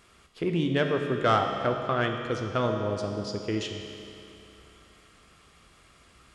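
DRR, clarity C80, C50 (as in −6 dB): 3.0 dB, 5.0 dB, 4.0 dB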